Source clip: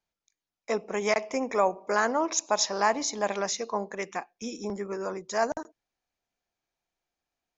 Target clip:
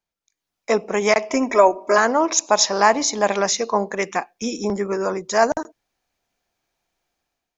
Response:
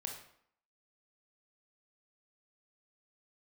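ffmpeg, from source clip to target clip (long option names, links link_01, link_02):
-filter_complex "[0:a]asettb=1/sr,asplit=3[link_01][link_02][link_03];[link_01]atrim=end=1.304[link_04];[link_02]atrim=start=1.3:end=1.98,asetpts=PTS-STARTPTS,afade=type=in:duration=0.004:curve=qsin,afade=type=out:start_time=0.676:duration=0.004:curve=qsin,aecho=1:1:3.1:0.96,atrim=end_sample=29988[link_05];[link_03]atrim=start=1.976[link_06];[link_04][link_05]acrossfade=duration=0.004:curve1=hsin:curve2=qsin[link_07];[link_07][link_06]acrossfade=duration=0.004:curve1=qsin:curve2=hsin,dynaudnorm=framelen=120:gausssize=7:maxgain=10.5dB"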